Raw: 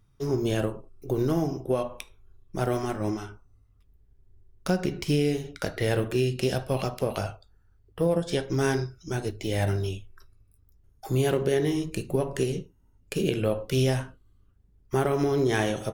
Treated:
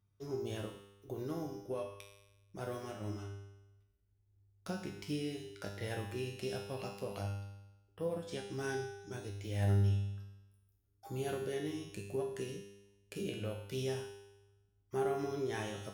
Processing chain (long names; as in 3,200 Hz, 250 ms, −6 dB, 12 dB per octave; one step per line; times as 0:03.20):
high-pass filter 42 Hz
tuned comb filter 100 Hz, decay 1 s, harmonics all, mix 90%
level +1 dB